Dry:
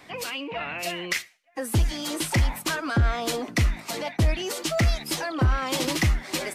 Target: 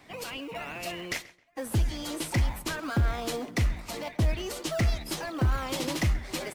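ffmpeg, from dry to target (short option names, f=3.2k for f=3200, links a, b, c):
-filter_complex "[0:a]asplit=2[a][b];[b]acrusher=samples=22:mix=1:aa=0.000001:lfo=1:lforange=13.2:lforate=2.3,volume=-8.5dB[c];[a][c]amix=inputs=2:normalize=0,asplit=2[d][e];[e]adelay=133,lowpass=f=3.5k:p=1,volume=-18dB,asplit=2[f][g];[g]adelay=133,lowpass=f=3.5k:p=1,volume=0.25[h];[d][f][h]amix=inputs=3:normalize=0,volume=-6.5dB"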